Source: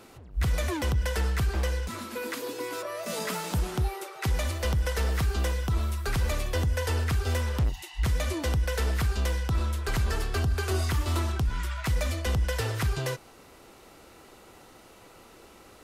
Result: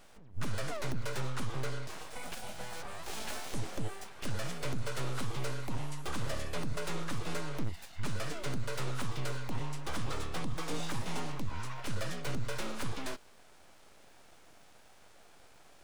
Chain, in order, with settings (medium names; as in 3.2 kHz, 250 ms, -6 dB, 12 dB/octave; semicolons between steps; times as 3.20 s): full-wave rectifier; formant shift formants -5 st; trim -4 dB